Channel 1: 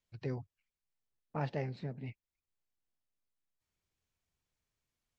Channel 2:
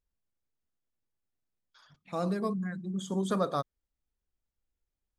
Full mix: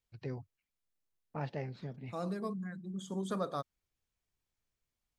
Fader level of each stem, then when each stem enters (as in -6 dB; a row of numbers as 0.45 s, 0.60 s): -2.5 dB, -6.5 dB; 0.00 s, 0.00 s